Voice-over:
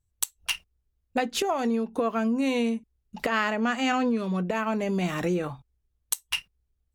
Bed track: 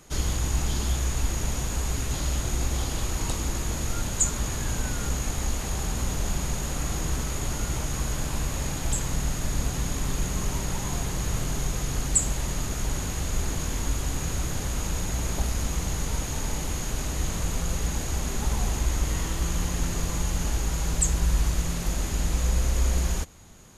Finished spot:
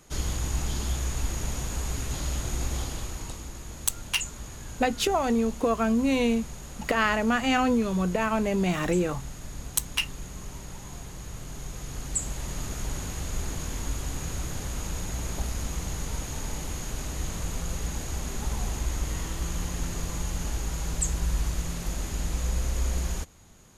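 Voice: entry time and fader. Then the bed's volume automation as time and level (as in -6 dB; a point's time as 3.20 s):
3.65 s, +1.5 dB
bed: 2.78 s -3 dB
3.50 s -11.5 dB
11.36 s -11.5 dB
12.65 s -4 dB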